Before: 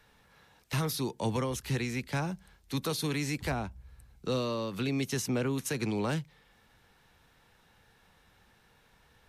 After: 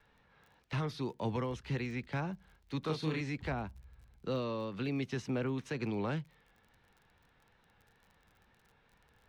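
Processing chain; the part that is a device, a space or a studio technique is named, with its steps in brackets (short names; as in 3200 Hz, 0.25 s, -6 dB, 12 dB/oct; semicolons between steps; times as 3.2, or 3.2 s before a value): lo-fi chain (LPF 3200 Hz 12 dB/oct; wow and flutter; crackle 37/s -48 dBFS); 2.8–3.21 doubler 32 ms -3.5 dB; gain -4 dB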